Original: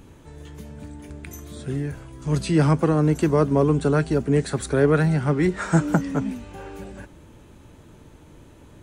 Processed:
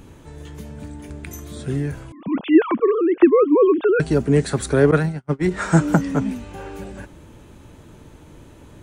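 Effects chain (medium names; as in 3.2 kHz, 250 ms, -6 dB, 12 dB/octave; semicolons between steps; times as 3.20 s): 2.12–4.00 s: formants replaced by sine waves; 4.91–5.51 s: gate -18 dBFS, range -46 dB; trim +3.5 dB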